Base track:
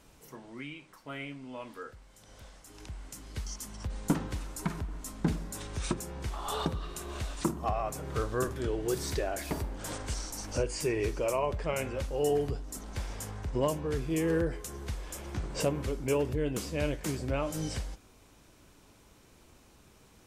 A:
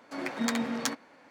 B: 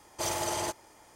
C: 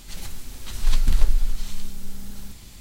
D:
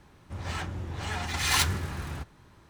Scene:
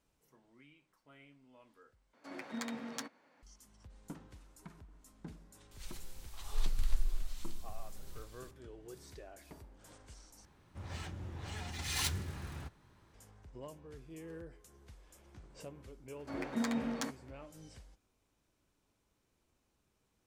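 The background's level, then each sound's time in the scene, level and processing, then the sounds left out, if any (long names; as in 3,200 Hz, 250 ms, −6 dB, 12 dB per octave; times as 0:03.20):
base track −19.5 dB
0:02.13: overwrite with A −11.5 dB
0:05.71: mix in C −13.5 dB + parametric band 260 Hz −11.5 dB 2 octaves
0:10.45: overwrite with D −8.5 dB + dynamic equaliser 1,200 Hz, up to −7 dB, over −43 dBFS, Q 0.74
0:16.16: mix in A −7 dB + tilt shelving filter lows +3.5 dB, about 910 Hz
not used: B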